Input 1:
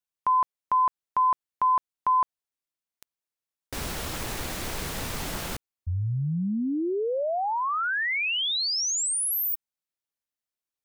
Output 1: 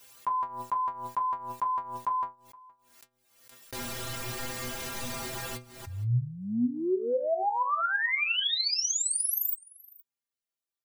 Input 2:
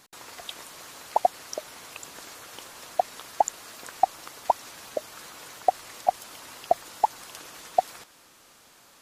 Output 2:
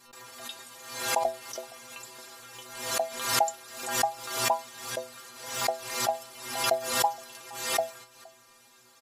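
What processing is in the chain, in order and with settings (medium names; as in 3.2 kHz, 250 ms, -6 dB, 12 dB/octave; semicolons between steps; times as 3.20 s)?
bass shelf 140 Hz -3 dB; inharmonic resonator 120 Hz, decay 0.35 s, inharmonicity 0.008; on a send: delay 468 ms -24 dB; on the sum: swell ahead of each attack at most 68 dB/s; trim +8 dB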